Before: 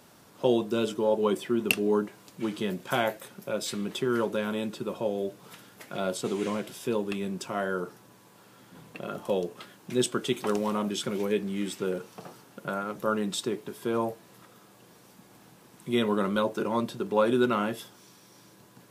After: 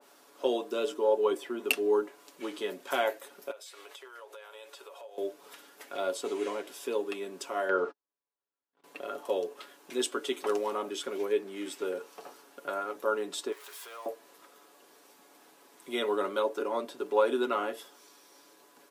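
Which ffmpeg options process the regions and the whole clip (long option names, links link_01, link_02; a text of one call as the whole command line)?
ffmpeg -i in.wav -filter_complex "[0:a]asettb=1/sr,asplit=3[link_01][link_02][link_03];[link_01]atrim=end=3.514[link_04];[link_02]atrim=start=3.51:end=5.18,asetpts=PTS-STARTPTS,afade=type=in:duration=0.004:curve=qsin,afade=type=out:start_time=1.666:duration=0.004:curve=qsin,highpass=frequency=540:width=0.5412,highpass=frequency=540:width=1.3066,acompressor=threshold=-42dB:ratio=16:attack=3.2:release=140:knee=1:detection=peak[link_05];[link_03]atrim=start=5.176[link_06];[link_04][link_05]acrossfade=duration=0.004:curve1=hsin:curve2=qsin[link_07];[link_07][link_06]acrossfade=duration=0.004:curve1=qsin:curve2=hsin,asettb=1/sr,asplit=3[link_08][link_09][link_10];[link_08]atrim=end=7.694[link_11];[link_09]atrim=start=7.69:end=8.84,asetpts=PTS-STARTPTS,afade=type=in:duration=0.004:curve=qsin,afade=type=out:start_time=1.146:duration=0.004:curve=qsin,lowpass=3600,agate=range=-47dB:threshold=-46dB:ratio=16:release=100:detection=peak,acontrast=64[link_12];[link_10]atrim=start=8.836[link_13];[link_11][link_12]acrossfade=duration=0.004:curve1=hsin:curve2=qsin[link_14];[link_14][link_13]acrossfade=duration=0.004:curve1=qsin:curve2=hsin,asettb=1/sr,asplit=3[link_15][link_16][link_17];[link_15]atrim=end=13.524[link_18];[link_16]atrim=start=13.52:end=14.06,asetpts=PTS-STARTPTS,afade=type=in:duration=0.004:curve=qsin,afade=type=out:start_time=0.536:duration=0.004:curve=qsin,aeval=exprs='val(0)+0.5*0.0133*sgn(val(0))':channel_layout=same,highpass=1100,acompressor=threshold=-41dB:ratio=2.5:attack=3.2:release=140:knee=1:detection=peak[link_19];[link_17]atrim=start=14.056[link_20];[link_18][link_19]acrossfade=duration=0.004:curve1=hsin:curve2=qsin[link_21];[link_21][link_20]acrossfade=duration=0.004:curve1=qsin:curve2=hsin,highpass=frequency=310:width=0.5412,highpass=frequency=310:width=1.3066,aecho=1:1:7.1:0.47,adynamicequalizer=threshold=0.00708:dfrequency=2000:dqfactor=0.7:tfrequency=2000:tqfactor=0.7:attack=5:release=100:ratio=0.375:range=2:mode=cutabove:tftype=highshelf,volume=-2.5dB" out.wav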